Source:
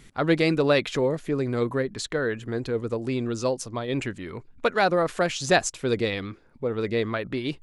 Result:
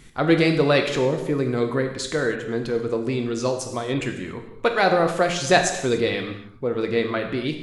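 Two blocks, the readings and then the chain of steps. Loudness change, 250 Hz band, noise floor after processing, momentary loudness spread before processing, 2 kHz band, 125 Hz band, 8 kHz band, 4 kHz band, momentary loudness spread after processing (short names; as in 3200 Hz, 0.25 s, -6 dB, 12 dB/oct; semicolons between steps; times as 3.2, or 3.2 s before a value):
+3.5 dB, +3.5 dB, -42 dBFS, 9 LU, +3.5 dB, +3.0 dB, +3.5 dB, +3.5 dB, 9 LU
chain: non-linear reverb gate 0.32 s falling, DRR 4 dB; gain +2 dB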